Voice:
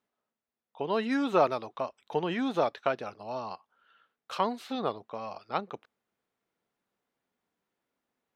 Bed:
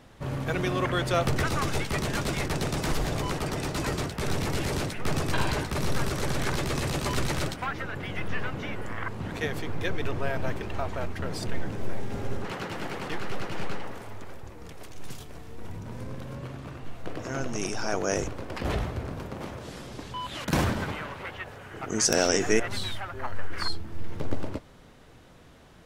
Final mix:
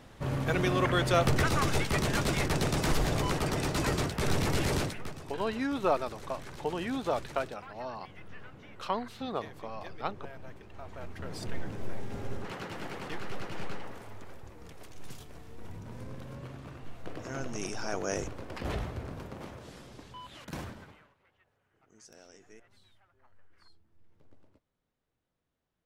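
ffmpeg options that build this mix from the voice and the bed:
ffmpeg -i stem1.wav -i stem2.wav -filter_complex "[0:a]adelay=4500,volume=-3.5dB[link_01];[1:a]volume=11.5dB,afade=type=out:start_time=4.76:duration=0.37:silence=0.141254,afade=type=in:start_time=10.72:duration=0.79:silence=0.266073,afade=type=out:start_time=19.21:duration=1.94:silence=0.0473151[link_02];[link_01][link_02]amix=inputs=2:normalize=0" out.wav

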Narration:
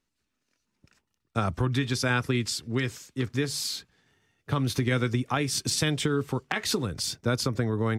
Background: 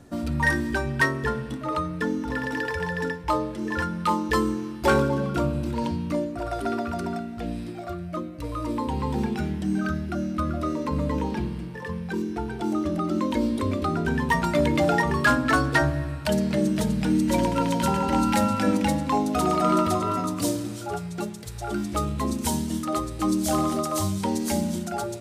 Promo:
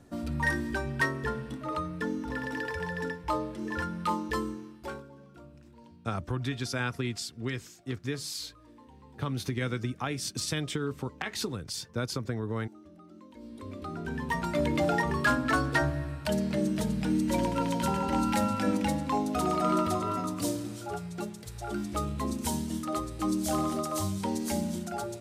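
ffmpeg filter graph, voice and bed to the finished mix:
ffmpeg -i stem1.wav -i stem2.wav -filter_complex "[0:a]adelay=4700,volume=-6dB[link_01];[1:a]volume=15dB,afade=type=out:start_time=4.09:duration=0.94:silence=0.0944061,afade=type=in:start_time=13.35:duration=1.42:silence=0.0891251[link_02];[link_01][link_02]amix=inputs=2:normalize=0" out.wav

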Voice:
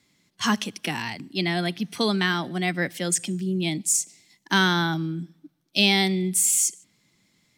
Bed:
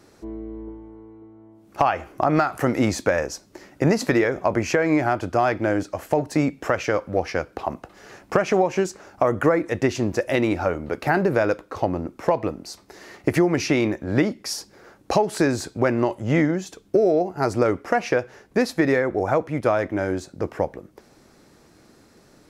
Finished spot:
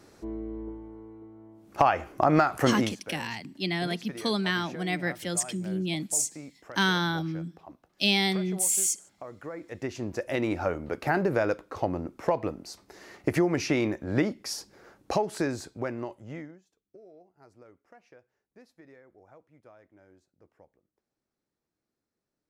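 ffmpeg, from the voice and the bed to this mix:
ffmpeg -i stem1.wav -i stem2.wav -filter_complex "[0:a]adelay=2250,volume=-4.5dB[link_01];[1:a]volume=15dB,afade=type=out:start_time=2.7:duration=0.25:silence=0.0944061,afade=type=in:start_time=9.45:duration=1.22:silence=0.141254,afade=type=out:start_time=14.88:duration=1.74:silence=0.0375837[link_02];[link_01][link_02]amix=inputs=2:normalize=0" out.wav

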